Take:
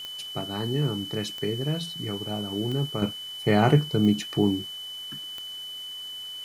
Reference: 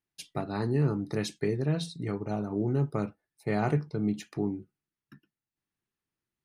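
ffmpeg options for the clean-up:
-af "adeclick=t=4,bandreject=f=3k:w=30,afwtdn=0.0032,asetnsamples=n=441:p=0,asendcmd='3.02 volume volume -8dB',volume=0dB"

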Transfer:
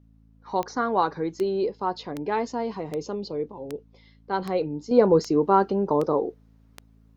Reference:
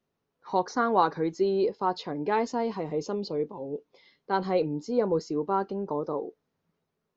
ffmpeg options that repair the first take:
-af "adeclick=t=4,bandreject=f=54.7:t=h:w=4,bandreject=f=109.4:t=h:w=4,bandreject=f=164.1:t=h:w=4,bandreject=f=218.8:t=h:w=4,bandreject=f=273.5:t=h:w=4,asetnsamples=n=441:p=0,asendcmd='4.91 volume volume -8dB',volume=0dB"

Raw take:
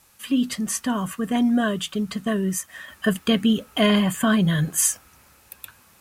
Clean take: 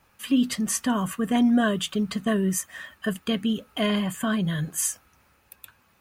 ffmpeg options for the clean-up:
-af "agate=range=-21dB:threshold=-47dB,asetnsamples=n=441:p=0,asendcmd='2.88 volume volume -6dB',volume=0dB"

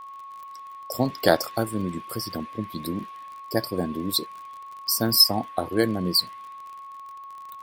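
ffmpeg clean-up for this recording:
-af "adeclick=t=4,bandreject=f=1.1k:w=30"

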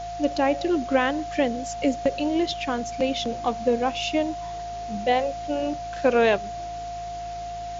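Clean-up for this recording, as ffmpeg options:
-af "bandreject=f=54.7:t=h:w=4,bandreject=f=109.4:t=h:w=4,bandreject=f=164.1:t=h:w=4,bandreject=f=700:w=30,afwtdn=0.0063"

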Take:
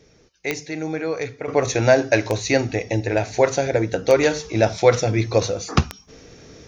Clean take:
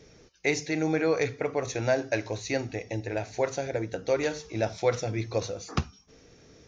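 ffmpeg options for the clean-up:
-af "adeclick=t=4,asetnsamples=n=441:p=0,asendcmd='1.48 volume volume -10.5dB',volume=0dB"

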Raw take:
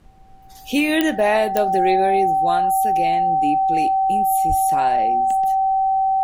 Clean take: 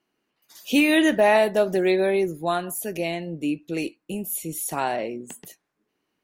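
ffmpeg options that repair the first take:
-filter_complex "[0:a]adeclick=t=4,bandreject=f=770:w=30,asplit=3[a][b][c];[a]afade=t=out:st=4.48:d=0.02[d];[b]highpass=f=140:w=0.5412,highpass=f=140:w=1.3066,afade=t=in:st=4.48:d=0.02,afade=t=out:st=4.6:d=0.02[e];[c]afade=t=in:st=4.6:d=0.02[f];[d][e][f]amix=inputs=3:normalize=0,agate=range=-21dB:threshold=-33dB"

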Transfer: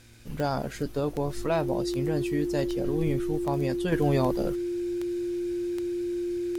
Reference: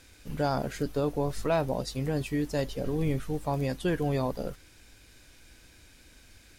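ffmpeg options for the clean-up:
-af "adeclick=t=4,bandreject=f=116.1:t=h:w=4,bandreject=f=232.2:t=h:w=4,bandreject=f=348.3:t=h:w=4,bandreject=f=350:w=30,asetnsamples=n=441:p=0,asendcmd='3.92 volume volume -4dB',volume=0dB"

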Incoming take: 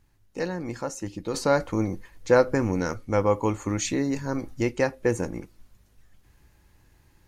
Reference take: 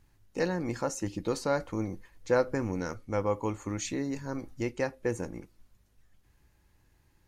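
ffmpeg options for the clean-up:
-af "asetnsamples=n=441:p=0,asendcmd='1.34 volume volume -7dB',volume=0dB"

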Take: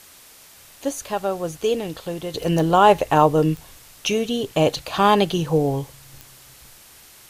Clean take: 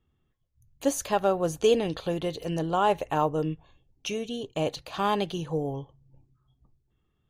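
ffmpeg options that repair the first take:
-af "adeclick=t=4,afwtdn=0.005,asetnsamples=n=441:p=0,asendcmd='2.34 volume volume -10dB',volume=0dB"

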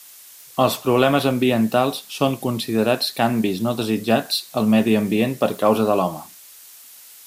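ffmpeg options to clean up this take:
-af "afftdn=nr=21:nf=-44"

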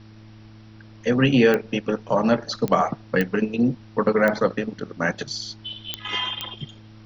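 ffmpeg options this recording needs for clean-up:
-af "adeclick=t=4,bandreject=f=108.4:t=h:w=4,bandreject=f=216.8:t=h:w=4,bandreject=f=325.2:t=h:w=4,agate=range=-21dB:threshold=-38dB"

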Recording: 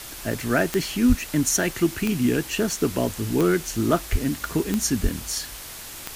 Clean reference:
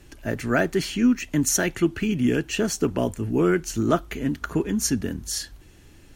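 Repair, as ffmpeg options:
-filter_complex "[0:a]adeclick=t=4,asplit=3[a][b][c];[a]afade=t=out:st=1.08:d=0.02[d];[b]highpass=f=140:w=0.5412,highpass=f=140:w=1.3066,afade=t=in:st=1.08:d=0.02,afade=t=out:st=1.2:d=0.02[e];[c]afade=t=in:st=1.2:d=0.02[f];[d][e][f]amix=inputs=3:normalize=0,asplit=3[g][h][i];[g]afade=t=out:st=4.11:d=0.02[j];[h]highpass=f=140:w=0.5412,highpass=f=140:w=1.3066,afade=t=in:st=4.11:d=0.02,afade=t=out:st=4.23:d=0.02[k];[i]afade=t=in:st=4.23:d=0.02[l];[j][k][l]amix=inputs=3:normalize=0,asplit=3[m][n][o];[m]afade=t=out:st=5.02:d=0.02[p];[n]highpass=f=140:w=0.5412,highpass=f=140:w=1.3066,afade=t=in:st=5.02:d=0.02,afade=t=out:st=5.14:d=0.02[q];[o]afade=t=in:st=5.14:d=0.02[r];[p][q][r]amix=inputs=3:normalize=0,afwtdn=0.014"

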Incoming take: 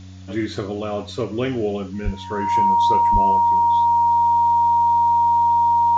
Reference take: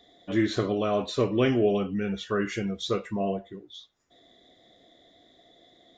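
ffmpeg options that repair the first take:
-filter_complex "[0:a]bandreject=f=93.4:t=h:w=4,bandreject=f=186.8:t=h:w=4,bandreject=f=280.2:t=h:w=4,bandreject=f=940:w=30,asplit=3[a][b][c];[a]afade=t=out:st=2.04:d=0.02[d];[b]highpass=f=140:w=0.5412,highpass=f=140:w=1.3066,afade=t=in:st=2.04:d=0.02,afade=t=out:st=2.16:d=0.02[e];[c]afade=t=in:st=2.16:d=0.02[f];[d][e][f]amix=inputs=3:normalize=0,asplit=3[g][h][i];[g]afade=t=out:st=3.12:d=0.02[j];[h]highpass=f=140:w=0.5412,highpass=f=140:w=1.3066,afade=t=in:st=3.12:d=0.02,afade=t=out:st=3.24:d=0.02[k];[i]afade=t=in:st=3.24:d=0.02[l];[j][k][l]amix=inputs=3:normalize=0,agate=range=-21dB:threshold=-25dB"

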